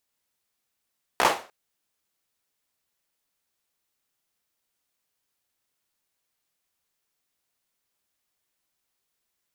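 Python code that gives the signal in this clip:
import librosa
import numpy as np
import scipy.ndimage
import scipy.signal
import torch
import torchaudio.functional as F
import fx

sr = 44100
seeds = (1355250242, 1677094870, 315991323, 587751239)

y = fx.drum_clap(sr, seeds[0], length_s=0.3, bursts=4, spacing_ms=16, hz=750.0, decay_s=0.36)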